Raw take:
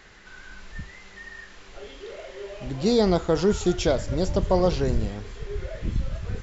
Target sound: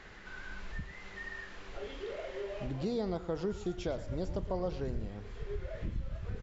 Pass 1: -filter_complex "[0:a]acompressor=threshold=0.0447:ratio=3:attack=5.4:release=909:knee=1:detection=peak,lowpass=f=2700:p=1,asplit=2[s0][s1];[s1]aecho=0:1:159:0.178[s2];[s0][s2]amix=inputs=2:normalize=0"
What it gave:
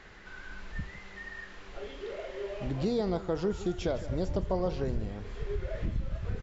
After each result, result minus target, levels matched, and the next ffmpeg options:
echo 44 ms late; compression: peak gain reduction -4.5 dB
-filter_complex "[0:a]acompressor=threshold=0.0447:ratio=3:attack=5.4:release=909:knee=1:detection=peak,lowpass=f=2700:p=1,asplit=2[s0][s1];[s1]aecho=0:1:115:0.178[s2];[s0][s2]amix=inputs=2:normalize=0"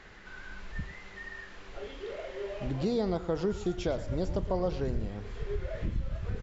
compression: peak gain reduction -4.5 dB
-filter_complex "[0:a]acompressor=threshold=0.02:ratio=3:attack=5.4:release=909:knee=1:detection=peak,lowpass=f=2700:p=1,asplit=2[s0][s1];[s1]aecho=0:1:115:0.178[s2];[s0][s2]amix=inputs=2:normalize=0"

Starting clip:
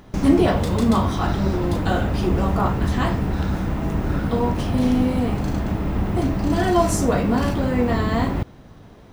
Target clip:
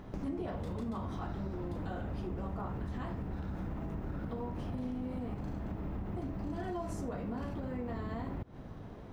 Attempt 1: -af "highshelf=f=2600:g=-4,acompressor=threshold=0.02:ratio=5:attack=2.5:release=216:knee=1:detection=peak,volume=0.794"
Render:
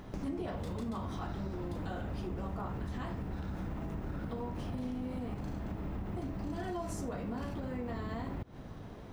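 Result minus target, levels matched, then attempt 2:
4 kHz band +4.0 dB
-af "highshelf=f=2600:g=-11,acompressor=threshold=0.02:ratio=5:attack=2.5:release=216:knee=1:detection=peak,volume=0.794"

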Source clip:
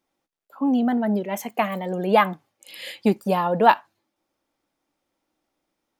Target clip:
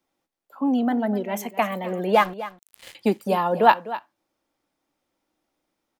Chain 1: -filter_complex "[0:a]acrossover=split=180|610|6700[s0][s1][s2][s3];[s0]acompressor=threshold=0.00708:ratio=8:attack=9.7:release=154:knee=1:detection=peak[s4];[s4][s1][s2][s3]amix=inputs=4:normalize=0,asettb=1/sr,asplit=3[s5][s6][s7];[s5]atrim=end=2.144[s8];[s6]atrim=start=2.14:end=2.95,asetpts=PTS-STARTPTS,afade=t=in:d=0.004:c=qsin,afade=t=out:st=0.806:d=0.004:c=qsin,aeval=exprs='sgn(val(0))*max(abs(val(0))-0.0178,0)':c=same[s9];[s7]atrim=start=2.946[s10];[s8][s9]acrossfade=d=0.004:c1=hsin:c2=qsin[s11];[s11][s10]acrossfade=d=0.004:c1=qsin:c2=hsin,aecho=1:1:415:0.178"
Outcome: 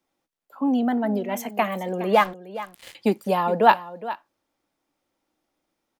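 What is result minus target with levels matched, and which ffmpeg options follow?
echo 163 ms late
-filter_complex "[0:a]acrossover=split=180|610|6700[s0][s1][s2][s3];[s0]acompressor=threshold=0.00708:ratio=8:attack=9.7:release=154:knee=1:detection=peak[s4];[s4][s1][s2][s3]amix=inputs=4:normalize=0,asettb=1/sr,asplit=3[s5][s6][s7];[s5]atrim=end=2.144[s8];[s6]atrim=start=2.14:end=2.95,asetpts=PTS-STARTPTS,afade=t=in:d=0.004:c=qsin,afade=t=out:st=0.806:d=0.004:c=qsin,aeval=exprs='sgn(val(0))*max(abs(val(0))-0.0178,0)':c=same[s9];[s7]atrim=start=2.946[s10];[s8][s9]acrossfade=d=0.004:c1=hsin:c2=qsin[s11];[s11][s10]acrossfade=d=0.004:c1=qsin:c2=hsin,aecho=1:1:252:0.178"

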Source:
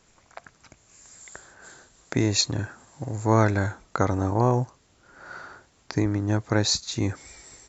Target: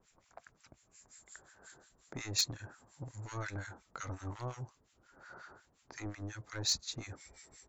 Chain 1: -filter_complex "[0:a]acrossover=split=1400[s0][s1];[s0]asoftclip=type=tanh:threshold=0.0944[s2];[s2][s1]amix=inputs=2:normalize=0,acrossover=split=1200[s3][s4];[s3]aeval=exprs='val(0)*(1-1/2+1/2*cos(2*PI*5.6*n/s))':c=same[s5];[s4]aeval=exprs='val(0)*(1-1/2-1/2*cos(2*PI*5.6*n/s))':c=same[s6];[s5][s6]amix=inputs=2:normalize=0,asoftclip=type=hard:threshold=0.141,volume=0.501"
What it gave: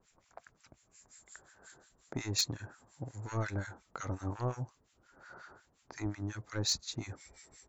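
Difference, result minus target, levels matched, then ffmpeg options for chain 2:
saturation: distortion -5 dB
-filter_complex "[0:a]acrossover=split=1400[s0][s1];[s0]asoftclip=type=tanh:threshold=0.0316[s2];[s2][s1]amix=inputs=2:normalize=0,acrossover=split=1200[s3][s4];[s3]aeval=exprs='val(0)*(1-1/2+1/2*cos(2*PI*5.6*n/s))':c=same[s5];[s4]aeval=exprs='val(0)*(1-1/2-1/2*cos(2*PI*5.6*n/s))':c=same[s6];[s5][s6]amix=inputs=2:normalize=0,asoftclip=type=hard:threshold=0.141,volume=0.501"

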